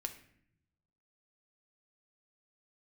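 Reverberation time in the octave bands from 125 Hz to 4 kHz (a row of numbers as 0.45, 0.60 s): 1.4, 1.1, 0.75, 0.60, 0.70, 0.50 s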